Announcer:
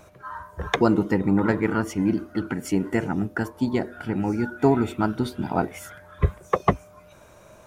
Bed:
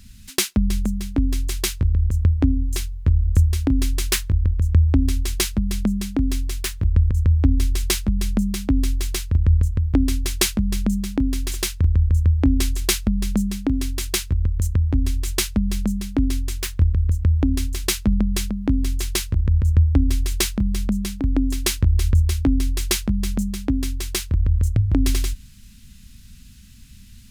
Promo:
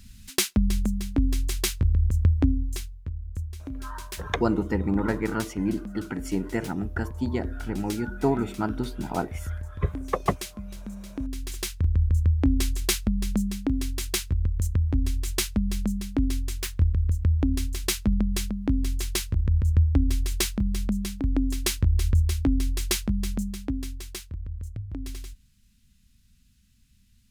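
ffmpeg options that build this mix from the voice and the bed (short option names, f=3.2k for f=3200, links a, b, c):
-filter_complex "[0:a]adelay=3600,volume=-4.5dB[a];[1:a]volume=9.5dB,afade=t=out:st=2.39:d=0.71:silence=0.199526,afade=t=in:st=10.92:d=1.13:silence=0.237137,afade=t=out:st=23.16:d=1.24:silence=0.251189[b];[a][b]amix=inputs=2:normalize=0"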